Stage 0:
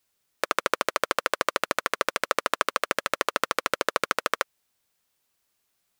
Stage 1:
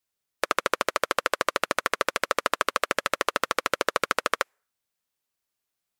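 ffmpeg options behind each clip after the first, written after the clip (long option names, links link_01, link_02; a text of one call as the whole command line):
ffmpeg -i in.wav -af "afftdn=noise_reduction=20:noise_floor=-50,alimiter=level_in=12.5dB:limit=-1dB:release=50:level=0:latency=1,volume=-1.5dB" out.wav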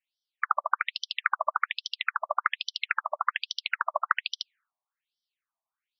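ffmpeg -i in.wav -af "afftfilt=real='re*between(b*sr/1024,820*pow(4300/820,0.5+0.5*sin(2*PI*1.2*pts/sr))/1.41,820*pow(4300/820,0.5+0.5*sin(2*PI*1.2*pts/sr))*1.41)':imag='im*between(b*sr/1024,820*pow(4300/820,0.5+0.5*sin(2*PI*1.2*pts/sr))/1.41,820*pow(4300/820,0.5+0.5*sin(2*PI*1.2*pts/sr))*1.41)':win_size=1024:overlap=0.75,volume=3dB" out.wav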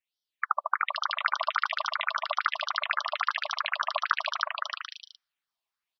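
ffmpeg -i in.wav -af "aecho=1:1:320|512|627.2|696.3|737.8:0.631|0.398|0.251|0.158|0.1,volume=-1.5dB" out.wav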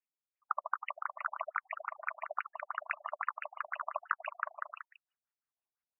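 ffmpeg -i in.wav -af "afftfilt=real='re*lt(b*sr/1024,730*pow(3000/730,0.5+0.5*sin(2*PI*5.9*pts/sr)))':imag='im*lt(b*sr/1024,730*pow(3000/730,0.5+0.5*sin(2*PI*5.9*pts/sr)))':win_size=1024:overlap=0.75,volume=-7dB" out.wav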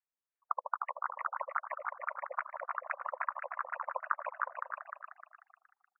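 ffmpeg -i in.wav -filter_complex "[0:a]asplit=5[link_01][link_02][link_03][link_04][link_05];[link_02]adelay=305,afreqshift=53,volume=-5dB[link_06];[link_03]adelay=610,afreqshift=106,volume=-13.9dB[link_07];[link_04]adelay=915,afreqshift=159,volume=-22.7dB[link_08];[link_05]adelay=1220,afreqshift=212,volume=-31.6dB[link_09];[link_01][link_06][link_07][link_08][link_09]amix=inputs=5:normalize=0,highpass=frequency=510:width_type=q:width=0.5412,highpass=frequency=510:width_type=q:width=1.307,lowpass=frequency=2100:width_type=q:width=0.5176,lowpass=frequency=2100:width_type=q:width=0.7071,lowpass=frequency=2100:width_type=q:width=1.932,afreqshift=-77" out.wav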